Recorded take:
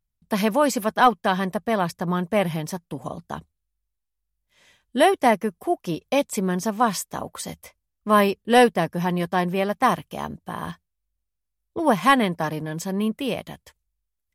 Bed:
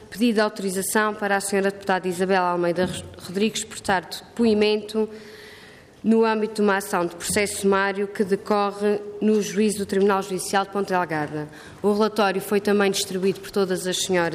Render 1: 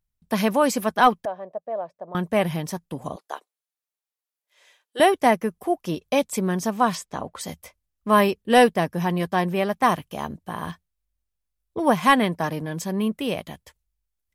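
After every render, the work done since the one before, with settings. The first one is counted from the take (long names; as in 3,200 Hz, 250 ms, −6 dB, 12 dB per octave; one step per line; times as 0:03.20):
0:01.25–0:02.15: resonant band-pass 600 Hz, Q 5
0:03.16–0:05.00: inverse Chebyshev high-pass filter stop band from 160 Hz, stop band 50 dB
0:06.95–0:07.41: high-frequency loss of the air 66 metres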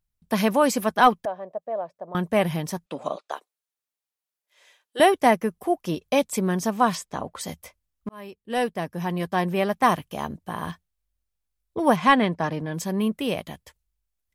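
0:02.86–0:03.32: loudspeaker in its box 250–8,300 Hz, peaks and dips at 590 Hz +8 dB, 1,300 Hz +9 dB, 2,500 Hz +9 dB, 3,800 Hz +8 dB
0:08.09–0:09.63: fade in
0:11.96–0:12.74: high-frequency loss of the air 78 metres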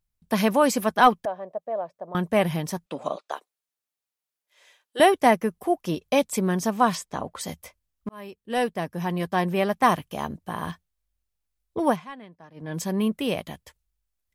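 0:11.83–0:12.76: duck −23 dB, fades 0.22 s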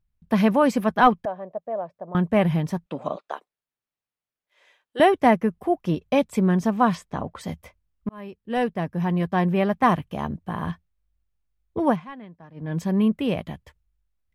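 bass and treble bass +7 dB, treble −12 dB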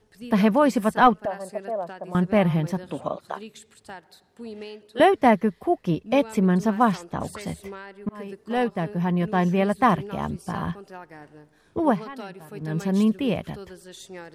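mix in bed −19 dB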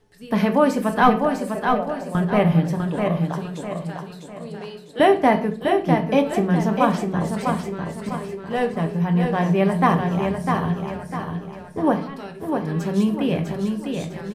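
repeating echo 651 ms, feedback 39%, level −5 dB
rectangular room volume 38 cubic metres, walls mixed, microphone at 0.32 metres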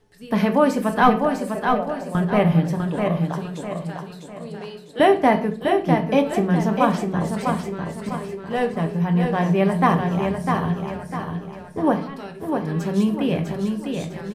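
no processing that can be heard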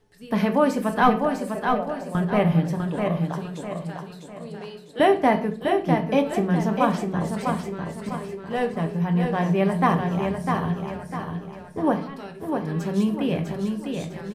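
level −2.5 dB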